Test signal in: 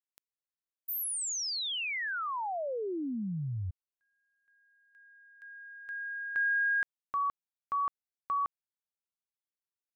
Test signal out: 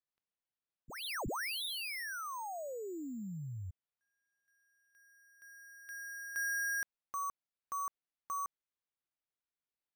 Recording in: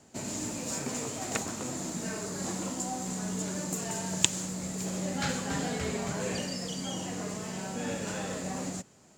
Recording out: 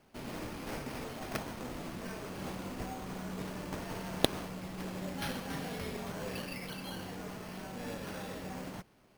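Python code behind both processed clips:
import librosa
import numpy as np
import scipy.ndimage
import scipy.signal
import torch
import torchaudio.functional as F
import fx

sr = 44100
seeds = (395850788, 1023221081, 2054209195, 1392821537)

y = scipy.signal.sosfilt(scipy.signal.butter(2, 8700.0, 'lowpass', fs=sr, output='sos'), x)
y = fx.high_shelf(y, sr, hz=5400.0, db=8.5)
y = np.repeat(y[::6], 6)[:len(y)]
y = y * librosa.db_to_amplitude(-7.5)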